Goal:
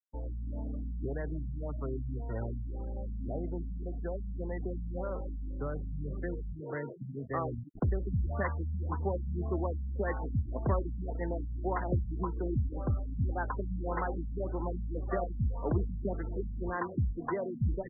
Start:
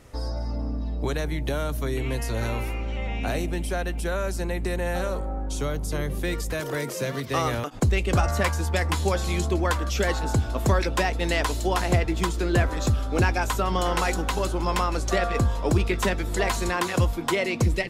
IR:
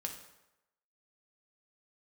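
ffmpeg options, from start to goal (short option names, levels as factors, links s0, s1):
-af "acrusher=bits=5:mix=0:aa=0.5,afftfilt=real='re*gte(hypot(re,im),0.0316)':imag='im*gte(hypot(re,im),0.0316)':win_size=1024:overlap=0.75,afftfilt=real='re*lt(b*sr/1024,240*pow(2100/240,0.5+0.5*sin(2*PI*1.8*pts/sr)))':imag='im*lt(b*sr/1024,240*pow(2100/240,0.5+0.5*sin(2*PI*1.8*pts/sr)))':win_size=1024:overlap=0.75,volume=0.398"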